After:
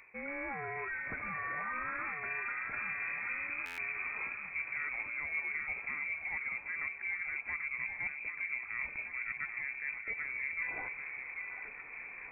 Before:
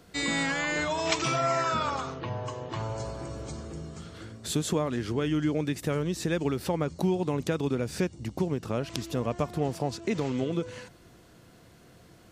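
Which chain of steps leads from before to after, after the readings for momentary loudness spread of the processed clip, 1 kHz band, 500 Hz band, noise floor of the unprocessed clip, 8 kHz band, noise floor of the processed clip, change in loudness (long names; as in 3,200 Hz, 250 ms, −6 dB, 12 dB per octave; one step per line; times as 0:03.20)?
4 LU, −10.5 dB, −21.5 dB, −55 dBFS, below −30 dB, −47 dBFS, −7.0 dB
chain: reversed playback
downward compressor 10 to 1, threshold −42 dBFS, peak gain reduction 20 dB
reversed playback
tape wow and flutter 17 cents
delay that swaps between a low-pass and a high-pass 787 ms, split 1,400 Hz, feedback 69%, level −5.5 dB
voice inversion scrambler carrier 2,500 Hz
buffer that repeats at 0:03.65, samples 512, times 10
level +5.5 dB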